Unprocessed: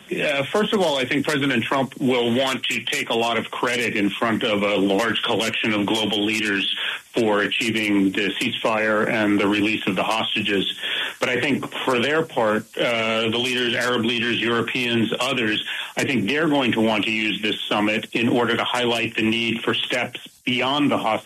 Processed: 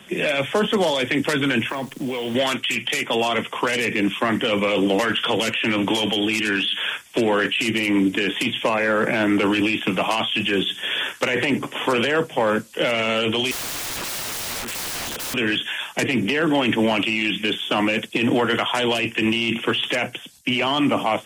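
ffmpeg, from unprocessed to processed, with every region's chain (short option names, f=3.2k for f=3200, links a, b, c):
-filter_complex "[0:a]asettb=1/sr,asplit=3[a][b][c];[a]atrim=end=1.694[d];[b]atrim=start=1.69:end=2.35,asetpts=PTS-STARTPTS,afade=t=in:d=0.004:c=qsin,afade=t=out:st=0.656:d=0.004:c=qsin,acompressor=threshold=-23dB:ratio=6:attack=3.2:release=140:knee=1:detection=peak,acrusher=bits=8:dc=4:mix=0:aa=0.000001[e];[c]atrim=start=2.346[f];[d][e]acrossfade=d=0.004:c1=hsin:c2=qsin[g];[g][f]acrossfade=d=0.004:c1=qsin:c2=hsin,asettb=1/sr,asplit=3[h][i][j];[h]atrim=end=13.514[k];[i]atrim=start=13.51:end=15.34,asetpts=PTS-STARTPTS,afade=t=in:d=0.004:c=qsin,afade=t=out:st=1.826:d=0.004:c=qsin,lowshelf=f=98:g=7.5,aeval=exprs='(mod(15.8*val(0)+1,2)-1)/15.8':c=same[l];[j]atrim=start=15.336[m];[k][l]acrossfade=d=0.004:c1=hsin:c2=qsin[n];[n][m]acrossfade=d=0.004:c1=qsin:c2=hsin"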